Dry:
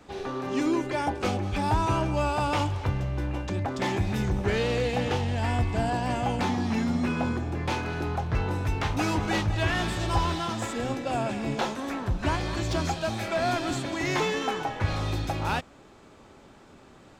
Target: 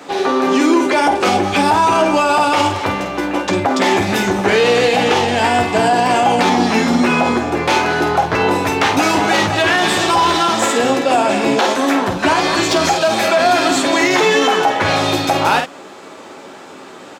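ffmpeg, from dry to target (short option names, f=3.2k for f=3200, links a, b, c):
-af "highpass=300,aecho=1:1:11|50:0.422|0.398,alimiter=level_in=21dB:limit=-1dB:release=50:level=0:latency=1,volume=-3.5dB"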